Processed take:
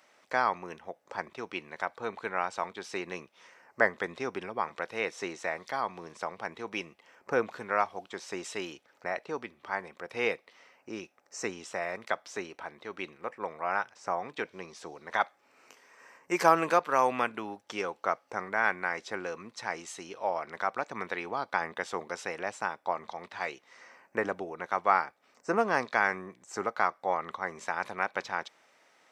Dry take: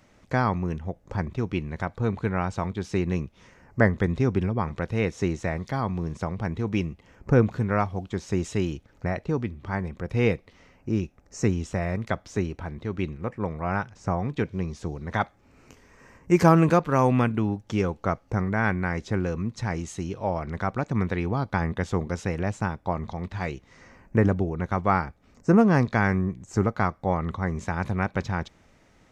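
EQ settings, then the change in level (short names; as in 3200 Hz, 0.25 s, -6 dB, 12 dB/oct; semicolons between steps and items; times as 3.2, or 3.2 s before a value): HPF 620 Hz 12 dB/oct; notch 6700 Hz, Q 13; 0.0 dB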